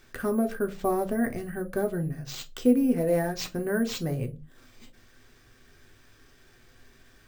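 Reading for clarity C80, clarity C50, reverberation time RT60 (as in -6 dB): 24.0 dB, 18.5 dB, no single decay rate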